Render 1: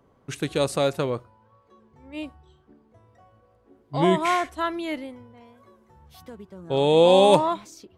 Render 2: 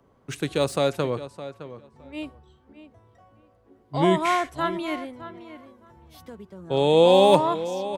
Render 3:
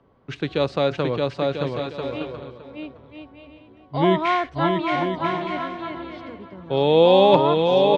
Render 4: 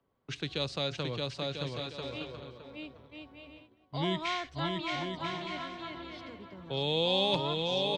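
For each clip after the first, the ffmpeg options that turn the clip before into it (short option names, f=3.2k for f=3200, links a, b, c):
-filter_complex "[0:a]asplit=2[a][b];[b]adelay=613,lowpass=f=3.1k:p=1,volume=-13.5dB,asplit=2[c][d];[d]adelay=613,lowpass=f=3.1k:p=1,volume=0.17[e];[a][c][e]amix=inputs=3:normalize=0,acrossover=split=150|4800[f][g][h];[h]volume=36dB,asoftclip=hard,volume=-36dB[i];[f][g][i]amix=inputs=3:normalize=0"
-filter_complex "[0:a]lowpass=f=4.4k:w=0.5412,lowpass=f=4.4k:w=1.3066,asplit=2[a][b];[b]aecho=0:1:620|992|1215|1349|1429:0.631|0.398|0.251|0.158|0.1[c];[a][c]amix=inputs=2:normalize=0,volume=1.5dB"
-filter_complex "[0:a]highshelf=f=2.8k:g=11,agate=range=-12dB:threshold=-46dB:ratio=16:detection=peak,acrossover=split=160|3000[a][b][c];[b]acompressor=threshold=-43dB:ratio=1.5[d];[a][d][c]amix=inputs=3:normalize=0,volume=-6.5dB"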